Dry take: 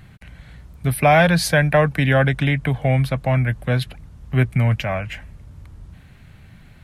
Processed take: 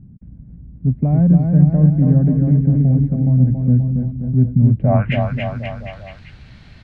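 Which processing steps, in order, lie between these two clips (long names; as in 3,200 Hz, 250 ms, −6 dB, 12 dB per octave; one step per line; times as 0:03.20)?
low-pass filter sweep 230 Hz → 4,800 Hz, 0:04.74–0:05.24
on a send: bouncing-ball delay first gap 280 ms, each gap 0.9×, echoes 5
on the sum: level +1 dB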